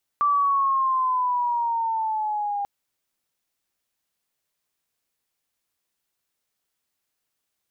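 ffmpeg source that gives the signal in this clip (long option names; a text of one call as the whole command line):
ffmpeg -f lavfi -i "aevalsrc='pow(10,(-17-7*t/2.44)/20)*sin(2*PI*1170*2.44/(-6.5*log(2)/12)*(exp(-6.5*log(2)/12*t/2.44)-1))':duration=2.44:sample_rate=44100" out.wav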